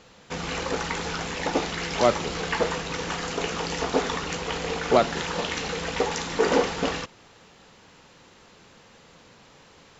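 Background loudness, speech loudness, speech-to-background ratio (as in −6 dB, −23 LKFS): −28.0 LKFS, −24.5 LKFS, 3.5 dB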